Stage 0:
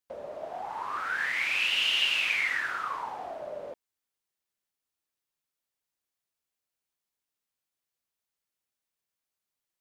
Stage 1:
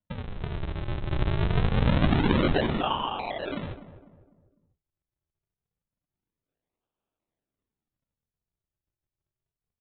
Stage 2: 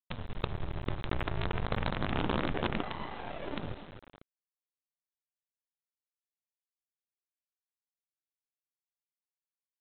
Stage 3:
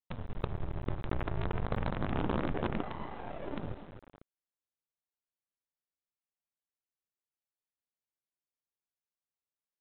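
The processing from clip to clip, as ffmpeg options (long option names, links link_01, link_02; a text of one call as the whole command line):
ffmpeg -i in.wav -filter_complex "[0:a]bandreject=frequency=60:width_type=h:width=6,bandreject=frequency=120:width_type=h:width=6,bandreject=frequency=180:width_type=h:width=6,bandreject=frequency=240:width_type=h:width=6,bandreject=frequency=300:width_type=h:width=6,bandreject=frequency=360:width_type=h:width=6,bandreject=frequency=420:width_type=h:width=6,bandreject=frequency=480:width_type=h:width=6,bandreject=frequency=540:width_type=h:width=6,aresample=8000,acrusher=samples=19:mix=1:aa=0.000001:lfo=1:lforange=30.4:lforate=0.25,aresample=44100,asplit=2[link_01][link_02];[link_02]adelay=250,lowpass=frequency=1100:poles=1,volume=-12.5dB,asplit=2[link_03][link_04];[link_04]adelay=250,lowpass=frequency=1100:poles=1,volume=0.43,asplit=2[link_05][link_06];[link_06]adelay=250,lowpass=frequency=1100:poles=1,volume=0.43,asplit=2[link_07][link_08];[link_08]adelay=250,lowpass=frequency=1100:poles=1,volume=0.43[link_09];[link_01][link_03][link_05][link_07][link_09]amix=inputs=5:normalize=0,volume=5.5dB" out.wav
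ffmpeg -i in.wav -filter_complex "[0:a]alimiter=limit=-18dB:level=0:latency=1:release=55,acrossover=split=410|1900[link_01][link_02][link_03];[link_01]acompressor=threshold=-29dB:ratio=4[link_04];[link_02]acompressor=threshold=-37dB:ratio=4[link_05];[link_03]acompressor=threshold=-55dB:ratio=4[link_06];[link_04][link_05][link_06]amix=inputs=3:normalize=0,aresample=8000,acrusher=bits=5:dc=4:mix=0:aa=0.000001,aresample=44100" out.wav
ffmpeg -i in.wav -af "lowpass=frequency=1200:poles=1" out.wav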